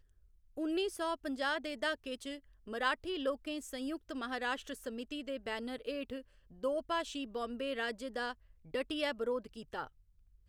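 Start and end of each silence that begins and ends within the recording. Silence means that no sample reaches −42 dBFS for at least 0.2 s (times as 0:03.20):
0:02.37–0:02.68
0:06.21–0:06.64
0:08.32–0:08.74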